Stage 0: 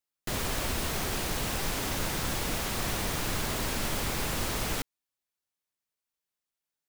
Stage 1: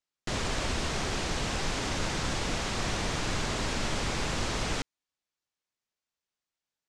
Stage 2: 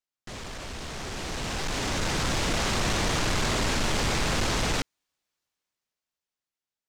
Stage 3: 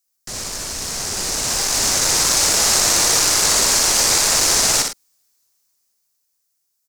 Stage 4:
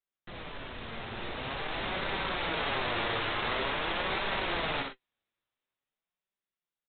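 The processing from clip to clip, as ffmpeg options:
-af "lowpass=f=7500:w=0.5412,lowpass=f=7500:w=1.3066,volume=1.12"
-af "asoftclip=type=tanh:threshold=0.0299,dynaudnorm=f=300:g=11:m=4.47,volume=0.631"
-filter_complex "[0:a]acrossover=split=370|940[s0][s1][s2];[s0]asoftclip=type=tanh:threshold=0.0119[s3];[s2]aexciter=amount=6.3:drive=2.5:freq=4600[s4];[s3][s1][s4]amix=inputs=3:normalize=0,aecho=1:1:62|105|110:0.596|0.211|0.15,volume=1.78"
-filter_complex "[0:a]flanger=delay=5.1:depth=3.7:regen=54:speed=0.47:shape=sinusoidal,asplit=2[s0][s1];[s1]adelay=18,volume=0.224[s2];[s0][s2]amix=inputs=2:normalize=0,aresample=8000,aresample=44100,volume=0.596"

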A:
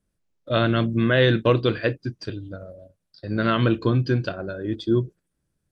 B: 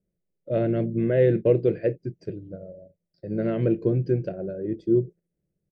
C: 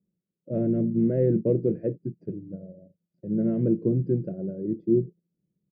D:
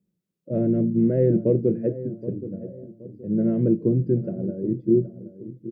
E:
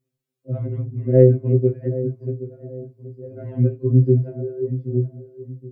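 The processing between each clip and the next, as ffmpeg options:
-af "firequalizer=gain_entry='entry(100,0);entry(180,11);entry(250,-2);entry(360,9);entry(560,7);entry(1100,-17);entry(2100,-2);entry(3500,-21);entry(5200,-10)':delay=0.05:min_phase=1,volume=0.447"
-af "bandpass=f=210:t=q:w=1.7:csg=0,volume=1.78"
-filter_complex "[0:a]asplit=2[s0][s1];[s1]adelay=773,lowpass=f=1100:p=1,volume=0.211,asplit=2[s2][s3];[s3]adelay=773,lowpass=f=1100:p=1,volume=0.39,asplit=2[s4][s5];[s5]adelay=773,lowpass=f=1100:p=1,volume=0.39,asplit=2[s6][s7];[s7]adelay=773,lowpass=f=1100:p=1,volume=0.39[s8];[s0][s2][s4][s6][s8]amix=inputs=5:normalize=0,volume=1.41"
-af "afftfilt=real='re*2.45*eq(mod(b,6),0)':imag='im*2.45*eq(mod(b,6),0)':win_size=2048:overlap=0.75,volume=1.58"

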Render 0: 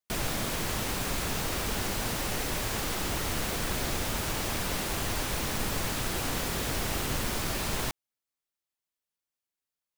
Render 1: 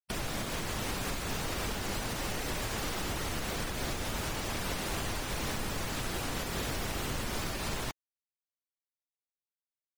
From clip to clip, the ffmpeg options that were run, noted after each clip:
-af "afftfilt=real='re*gte(hypot(re,im),0.0126)':imag='im*gte(hypot(re,im),0.0126)':win_size=1024:overlap=0.75,alimiter=level_in=1.88:limit=0.0631:level=0:latency=1:release=486,volume=0.531,volume=1.78"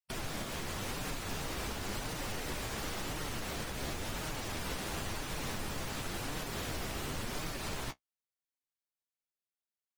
-af "flanger=delay=6.4:depth=9:regen=-30:speed=0.94:shape=sinusoidal"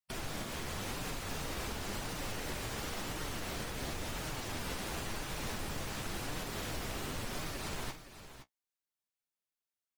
-af "aecho=1:1:45|516:0.266|0.251,volume=0.841"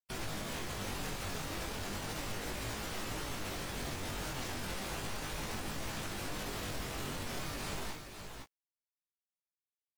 -af "alimiter=level_in=3.55:limit=0.0631:level=0:latency=1,volume=0.282,flanger=delay=18.5:depth=2.9:speed=0.35,acrusher=bits=11:mix=0:aa=0.000001,volume=2.37"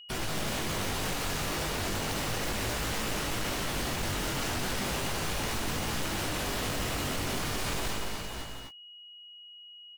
-af "aecho=1:1:142.9|174.9|247.8:0.282|0.355|0.562,aeval=exprs='val(0)+0.002*sin(2*PI*2900*n/s)':c=same,aeval=exprs='0.0224*(abs(mod(val(0)/0.0224+3,4)-2)-1)':c=same,volume=2.24"

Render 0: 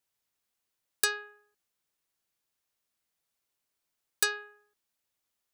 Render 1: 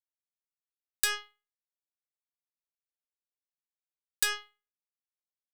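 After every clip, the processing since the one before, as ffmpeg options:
-af "alimiter=limit=0.0841:level=0:latency=1:release=101,aeval=exprs='0.0841*(cos(1*acos(clip(val(0)/0.0841,-1,1)))-cos(1*PI/2))+0.0119*(cos(7*acos(clip(val(0)/0.0841,-1,1)))-cos(7*PI/2))+0.00944*(cos(8*acos(clip(val(0)/0.0841,-1,1)))-cos(8*PI/2))':c=same,tiltshelf=f=970:g=-5.5,volume=1.58"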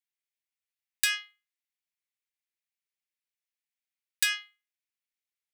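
-af "highpass=f=2100:t=q:w=2.4"

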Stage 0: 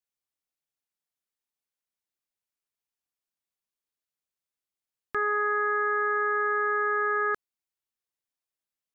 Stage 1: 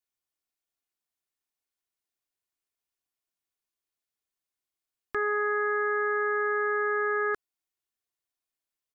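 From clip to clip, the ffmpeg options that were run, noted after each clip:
-af "aecho=1:1:2.8:0.33"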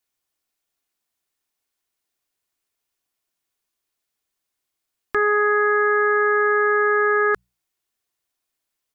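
-af "bandreject=f=60:t=h:w=6,bandreject=f=120:t=h:w=6,bandreject=f=180:t=h:w=6,volume=2.82"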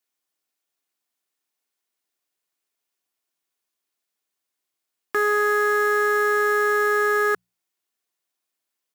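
-af "highpass=170,acrusher=bits=4:mode=log:mix=0:aa=0.000001,volume=0.794"

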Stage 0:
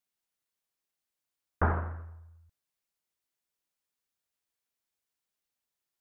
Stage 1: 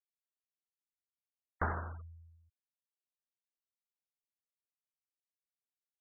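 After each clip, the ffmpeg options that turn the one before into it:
-af "afftfilt=real='re*gte(hypot(re,im),0.00794)':imag='im*gte(hypot(re,im),0.00794)':win_size=1024:overlap=0.75,acompressor=threshold=0.0178:ratio=1.5,tiltshelf=f=970:g=-4,volume=0.891"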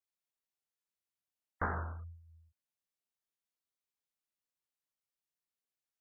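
-af "flanger=delay=20:depth=6.5:speed=1.8,volume=1.41"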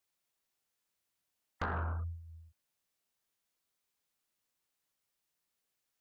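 -filter_complex "[0:a]acompressor=threshold=0.0126:ratio=16,asplit=2[s0][s1];[s1]aeval=exprs='0.0447*sin(PI/2*2.82*val(0)/0.0447)':c=same,volume=0.282[s2];[s0][s2]amix=inputs=2:normalize=0,volume=1.19"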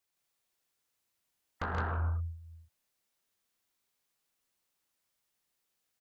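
-af "aecho=1:1:131.2|166.2:0.447|0.891"

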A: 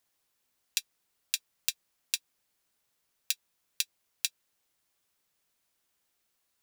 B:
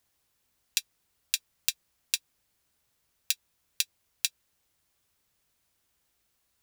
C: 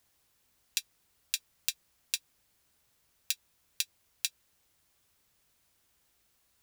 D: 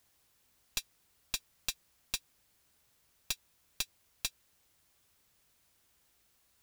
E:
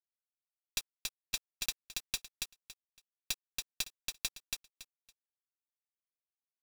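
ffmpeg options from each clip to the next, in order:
-af "equalizer=f=60:w=0.58:g=12,volume=1.33"
-af "alimiter=limit=0.376:level=0:latency=1:release=72,volume=1.41"
-af "aeval=exprs='(tanh(17.8*val(0)+0.4)-tanh(0.4))/17.8':c=same,volume=1.26"
-af "asoftclip=type=tanh:threshold=0.0794,acrusher=bits=7:mix=0:aa=0.000001,aecho=1:1:280|560|840:0.708|0.156|0.0343,volume=1.12"

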